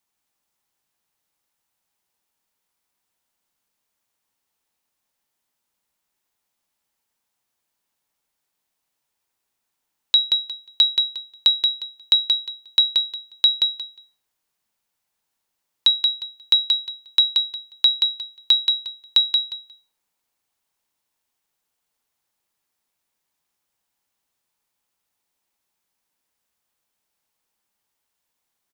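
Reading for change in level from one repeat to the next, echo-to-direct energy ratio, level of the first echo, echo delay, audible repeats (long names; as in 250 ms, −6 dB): −14.5 dB, −5.0 dB, −5.0 dB, 178 ms, 2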